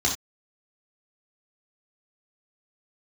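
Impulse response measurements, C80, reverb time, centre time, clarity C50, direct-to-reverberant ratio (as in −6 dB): 13.5 dB, non-exponential decay, 22 ms, 7.5 dB, −3.0 dB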